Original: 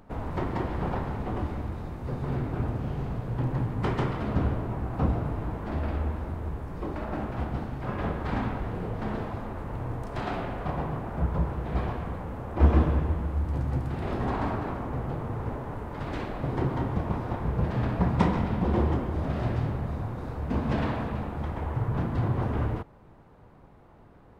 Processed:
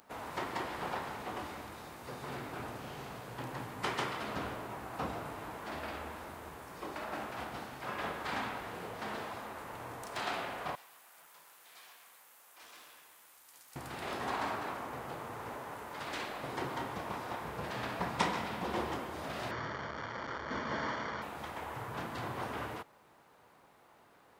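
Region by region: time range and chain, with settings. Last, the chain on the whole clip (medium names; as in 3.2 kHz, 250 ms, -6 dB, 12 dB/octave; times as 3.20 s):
10.75–13.76 s: differentiator + valve stage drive 49 dB, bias 0.45
19.51–21.22 s: one-bit delta coder 32 kbps, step -25.5 dBFS + Savitzky-Golay filter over 41 samples + band-stop 750 Hz, Q 7.3
whole clip: high-pass 1.1 kHz 6 dB/octave; treble shelf 4 kHz +11.5 dB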